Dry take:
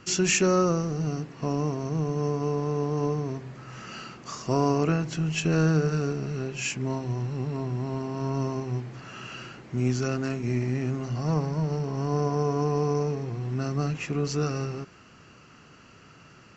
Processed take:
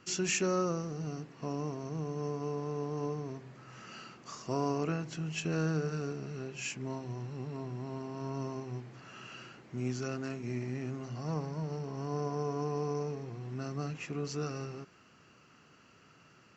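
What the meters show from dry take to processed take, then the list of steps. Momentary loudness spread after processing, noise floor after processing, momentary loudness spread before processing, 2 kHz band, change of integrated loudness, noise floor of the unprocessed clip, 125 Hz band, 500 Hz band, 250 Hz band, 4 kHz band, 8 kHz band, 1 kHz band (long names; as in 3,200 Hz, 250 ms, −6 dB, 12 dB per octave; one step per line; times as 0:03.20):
15 LU, −61 dBFS, 15 LU, −8.0 dB, −9.0 dB, −53 dBFS, −10.5 dB, −8.5 dB, −9.0 dB, −8.0 dB, can't be measured, −8.0 dB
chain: low-shelf EQ 71 Hz −11.5 dB
level −8 dB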